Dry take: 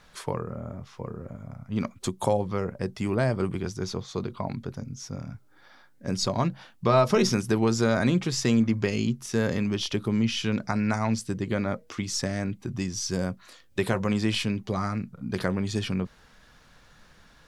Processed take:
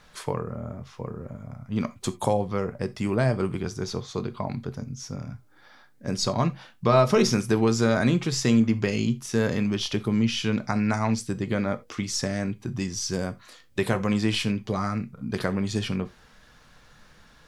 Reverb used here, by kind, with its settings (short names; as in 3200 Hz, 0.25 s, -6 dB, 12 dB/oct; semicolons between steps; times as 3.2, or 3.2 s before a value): non-linear reverb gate 0.11 s falling, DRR 11 dB; gain +1 dB